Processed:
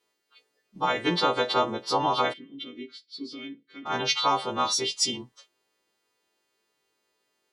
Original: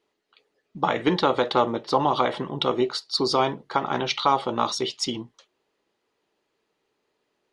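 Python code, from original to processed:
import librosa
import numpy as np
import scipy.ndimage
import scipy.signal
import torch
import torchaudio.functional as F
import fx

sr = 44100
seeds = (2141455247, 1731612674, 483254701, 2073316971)

y = fx.freq_snap(x, sr, grid_st=2)
y = fx.vowel_filter(y, sr, vowel='i', at=(2.32, 3.85), fade=0.02)
y = y * librosa.db_to_amplitude(-3.5)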